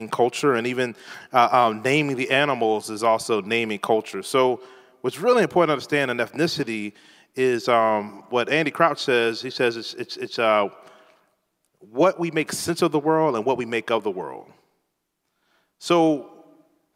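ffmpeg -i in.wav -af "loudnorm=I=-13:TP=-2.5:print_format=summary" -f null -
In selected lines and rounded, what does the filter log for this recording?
Input Integrated:    -22.2 LUFS
Input True Peak:      -2.1 dBTP
Input LRA:             4.8 LU
Input Threshold:     -33.2 LUFS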